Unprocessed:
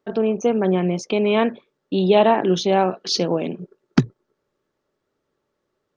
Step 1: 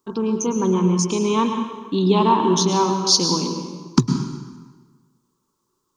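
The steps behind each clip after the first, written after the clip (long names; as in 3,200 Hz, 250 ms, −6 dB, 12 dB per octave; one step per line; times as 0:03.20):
drawn EQ curve 370 Hz 0 dB, 690 Hz −19 dB, 990 Hz +11 dB, 1,800 Hz −13 dB, 7,000 Hz +14 dB
dense smooth reverb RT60 1.4 s, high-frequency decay 0.8×, pre-delay 95 ms, DRR 5 dB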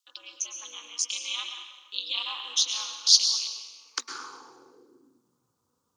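ring modulation 120 Hz
high-pass filter sweep 3,100 Hz → 96 Hz, 0:03.76–0:05.61
level −1.5 dB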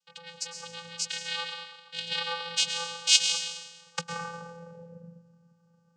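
channel vocoder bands 8, square 169 Hz
level −1.5 dB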